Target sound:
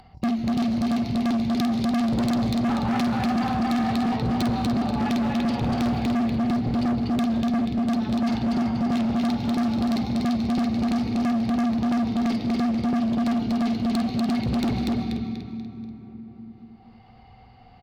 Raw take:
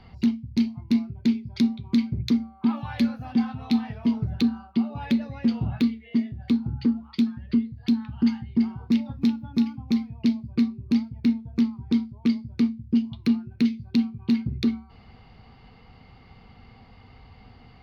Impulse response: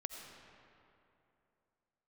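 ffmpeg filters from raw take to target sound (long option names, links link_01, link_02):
-filter_complex "[0:a]acontrast=49,agate=range=-36dB:threshold=-32dB:ratio=16:detection=peak,asplit=2[link_01][link_02];[1:a]atrim=start_sample=2205,adelay=50[link_03];[link_02][link_03]afir=irnorm=-1:irlink=0,volume=-0.5dB[link_04];[link_01][link_04]amix=inputs=2:normalize=0,acompressor=mode=upward:threshold=-32dB:ratio=2.5,equalizer=frequency=740:width_type=o:width=0.26:gain=11,aecho=1:1:242|484|726|968|1210:0.668|0.274|0.112|0.0461|0.0189,asoftclip=type=hard:threshold=-20dB,volume=-1dB"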